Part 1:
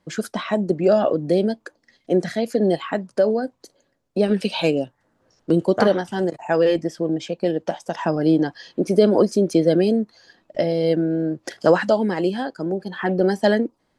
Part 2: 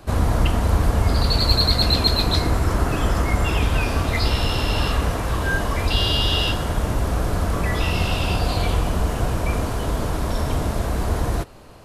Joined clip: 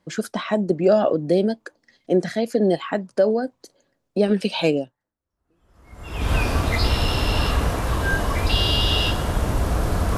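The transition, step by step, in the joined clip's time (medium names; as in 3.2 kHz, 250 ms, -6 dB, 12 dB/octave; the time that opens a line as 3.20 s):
part 1
5.53 s: go over to part 2 from 2.94 s, crossfade 1.54 s exponential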